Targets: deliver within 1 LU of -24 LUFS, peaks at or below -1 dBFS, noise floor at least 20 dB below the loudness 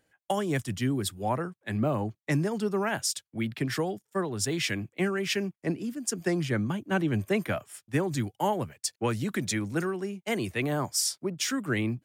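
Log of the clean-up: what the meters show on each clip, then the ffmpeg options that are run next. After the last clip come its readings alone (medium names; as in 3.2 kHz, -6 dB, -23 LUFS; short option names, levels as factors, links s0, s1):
loudness -30.0 LUFS; peak level -14.5 dBFS; loudness target -24.0 LUFS
-> -af "volume=2"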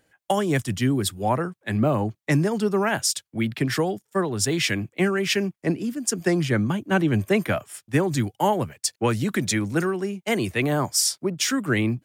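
loudness -24.0 LUFS; peak level -8.5 dBFS; noise floor -80 dBFS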